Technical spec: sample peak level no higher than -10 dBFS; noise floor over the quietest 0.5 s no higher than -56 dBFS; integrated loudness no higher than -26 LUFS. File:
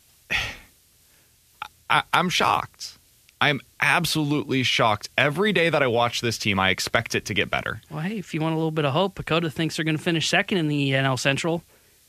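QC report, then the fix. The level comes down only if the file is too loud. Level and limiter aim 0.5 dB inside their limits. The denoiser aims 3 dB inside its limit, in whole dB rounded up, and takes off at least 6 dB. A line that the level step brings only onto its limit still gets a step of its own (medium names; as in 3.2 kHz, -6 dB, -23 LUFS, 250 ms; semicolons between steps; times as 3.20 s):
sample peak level -4.5 dBFS: fail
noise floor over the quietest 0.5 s -58 dBFS: pass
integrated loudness -22.5 LUFS: fail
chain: trim -4 dB; peak limiter -10.5 dBFS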